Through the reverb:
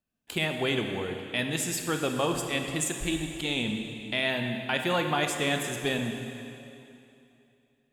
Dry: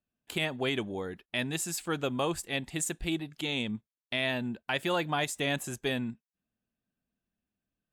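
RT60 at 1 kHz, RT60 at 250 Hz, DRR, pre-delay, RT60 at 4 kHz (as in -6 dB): 2.8 s, 2.8 s, 4.0 dB, 7 ms, 2.6 s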